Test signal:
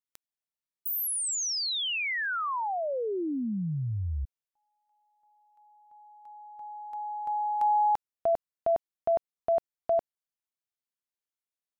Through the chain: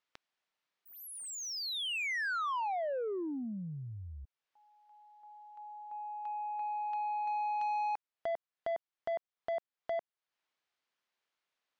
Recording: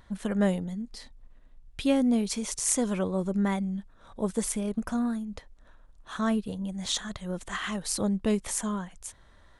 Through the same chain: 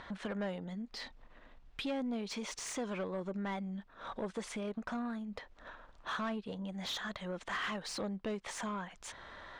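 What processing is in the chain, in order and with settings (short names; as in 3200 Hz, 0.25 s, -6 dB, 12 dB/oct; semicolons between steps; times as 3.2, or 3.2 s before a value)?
LPF 5100 Hz 12 dB/oct; compressor 2.5:1, threshold -48 dBFS; overdrive pedal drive 20 dB, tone 3000 Hz, clips at -27 dBFS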